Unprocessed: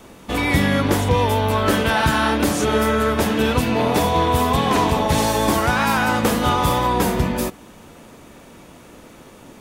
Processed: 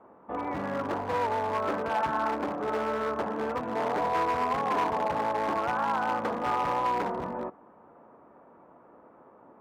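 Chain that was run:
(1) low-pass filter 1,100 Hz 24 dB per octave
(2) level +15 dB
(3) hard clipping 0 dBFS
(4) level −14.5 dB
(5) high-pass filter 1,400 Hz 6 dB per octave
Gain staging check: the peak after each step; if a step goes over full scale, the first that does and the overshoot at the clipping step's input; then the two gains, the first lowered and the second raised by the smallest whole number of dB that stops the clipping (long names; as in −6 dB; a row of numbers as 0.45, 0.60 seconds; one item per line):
−5.5, +9.5, 0.0, −14.5, −15.5 dBFS
step 2, 9.5 dB
step 2 +5 dB, step 4 −4.5 dB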